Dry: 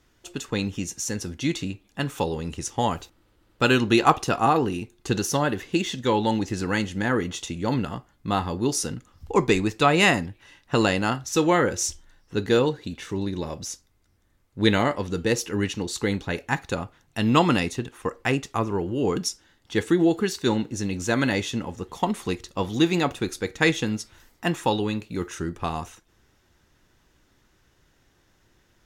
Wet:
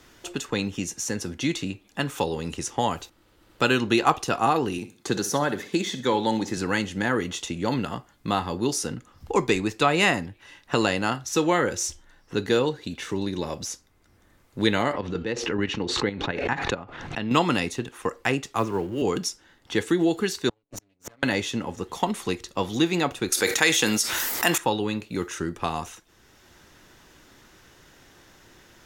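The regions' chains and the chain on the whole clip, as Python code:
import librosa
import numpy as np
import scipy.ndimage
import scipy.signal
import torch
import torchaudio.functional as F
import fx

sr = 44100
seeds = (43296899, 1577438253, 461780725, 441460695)

y = fx.chain(x, sr, fx.highpass(hz=120.0, slope=12),
    fx.notch(hz=2800.0, q=7.0),
    fx.echo_feedback(ms=63, feedback_pct=29, wet_db=-14.0), at=(4.78, 6.57))
y = fx.chain(y, sr, fx.lowpass(hz=3200.0, slope=12),
    fx.chopper(hz=4.6, depth_pct=60, duty_pct=35),
    fx.pre_swell(db_per_s=48.0), at=(14.93, 17.31))
y = fx.chain(y, sr, fx.law_mismatch(coded='mu'),
    fx.band_widen(depth_pct=100), at=(18.54, 19.02))
y = fx.chain(y, sr, fx.lower_of_two(delay_ms=7.0),
    fx.transient(attack_db=4, sustain_db=-12),
    fx.gate_flip(shuts_db=-24.0, range_db=-41), at=(20.49, 21.23))
y = fx.chain(y, sr, fx.riaa(side='recording'),
    fx.env_flatten(amount_pct=70), at=(23.32, 24.58))
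y = fx.low_shelf(y, sr, hz=190.0, db=-5.5)
y = fx.band_squash(y, sr, depth_pct=40)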